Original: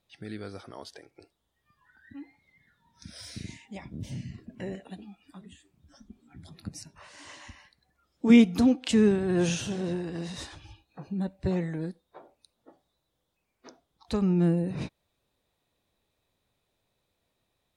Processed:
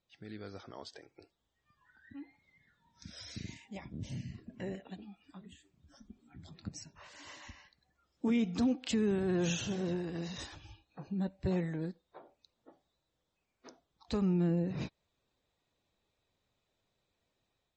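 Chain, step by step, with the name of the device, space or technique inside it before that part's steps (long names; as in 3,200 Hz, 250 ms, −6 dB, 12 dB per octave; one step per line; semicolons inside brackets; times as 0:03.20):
low-bitrate web radio (automatic gain control gain up to 4.5 dB; brickwall limiter −15 dBFS, peak gain reduction 10.5 dB; level −8 dB; MP3 32 kbit/s 44,100 Hz)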